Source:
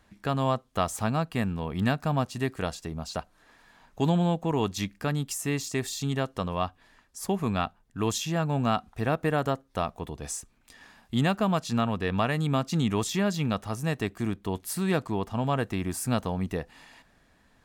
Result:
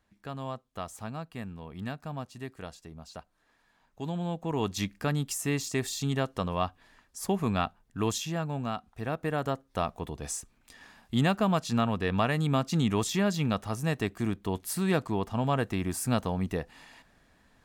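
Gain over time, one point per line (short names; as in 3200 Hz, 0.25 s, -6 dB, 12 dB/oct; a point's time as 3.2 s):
4.04 s -11 dB
4.78 s -0.5 dB
7.98 s -0.5 dB
8.77 s -8.5 dB
9.86 s -0.5 dB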